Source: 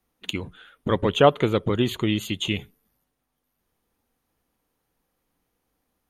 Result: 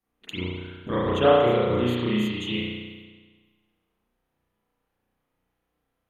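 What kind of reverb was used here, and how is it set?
spring tank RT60 1.4 s, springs 33 ms, chirp 60 ms, DRR -9.5 dB; gain -10.5 dB

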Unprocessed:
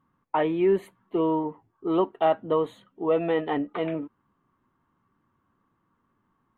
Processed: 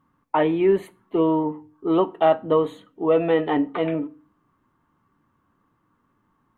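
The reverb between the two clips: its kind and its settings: FDN reverb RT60 0.39 s, low-frequency decay 1.35×, high-frequency decay 0.8×, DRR 13.5 dB; gain +4 dB

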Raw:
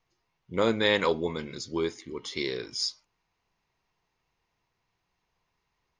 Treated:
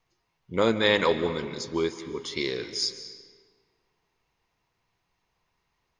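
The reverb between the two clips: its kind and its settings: digital reverb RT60 1.7 s, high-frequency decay 0.75×, pre-delay 0.115 s, DRR 11.5 dB; gain +2 dB

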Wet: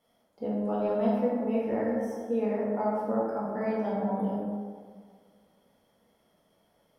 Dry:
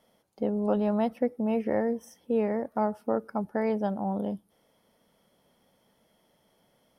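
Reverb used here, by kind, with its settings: plate-style reverb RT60 1.9 s, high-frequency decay 0.45×, DRR -7 dB; gain -8.5 dB

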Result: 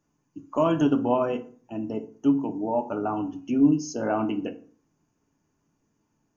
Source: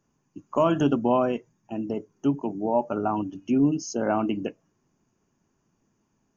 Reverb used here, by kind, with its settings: FDN reverb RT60 0.44 s, low-frequency decay 1.2×, high-frequency decay 0.65×, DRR 6 dB; gain -2.5 dB

